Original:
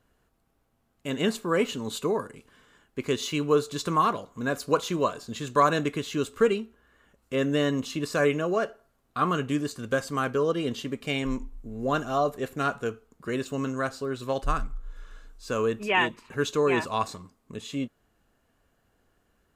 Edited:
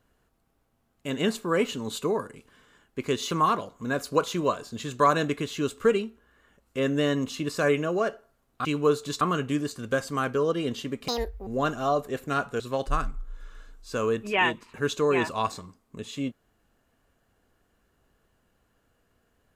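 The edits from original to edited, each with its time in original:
3.31–3.87 s: move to 9.21 s
11.08–11.76 s: speed 175%
12.89–14.16 s: delete

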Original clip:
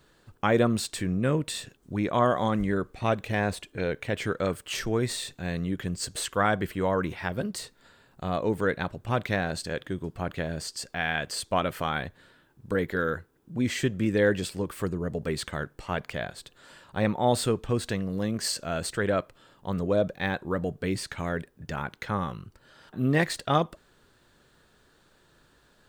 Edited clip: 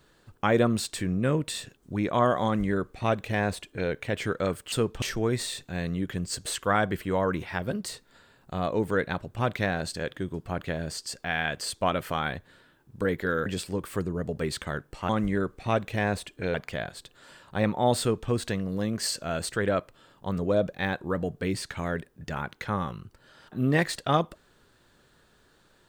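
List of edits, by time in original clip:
2.45–3.90 s: copy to 15.95 s
13.16–14.32 s: delete
17.41–17.71 s: copy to 4.72 s

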